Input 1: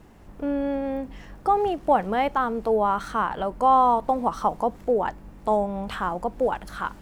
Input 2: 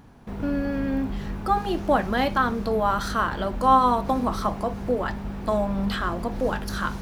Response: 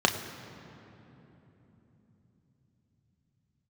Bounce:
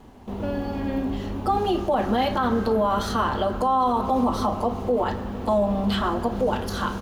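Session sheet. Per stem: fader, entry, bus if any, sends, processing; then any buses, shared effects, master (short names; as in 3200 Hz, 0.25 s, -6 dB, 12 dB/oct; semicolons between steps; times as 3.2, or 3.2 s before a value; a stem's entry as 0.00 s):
-2.5 dB, 0.00 s, no send, dry
-1.0 dB, 3.7 ms, send -15.5 dB, dry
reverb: on, RT60 3.5 s, pre-delay 3 ms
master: limiter -13.5 dBFS, peak gain reduction 11 dB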